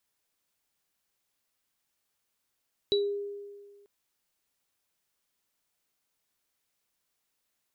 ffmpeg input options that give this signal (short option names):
-f lavfi -i "aevalsrc='0.0794*pow(10,-3*t/1.66)*sin(2*PI*405*t)+0.0708*pow(10,-3*t/0.24)*sin(2*PI*3920*t)':d=0.94:s=44100"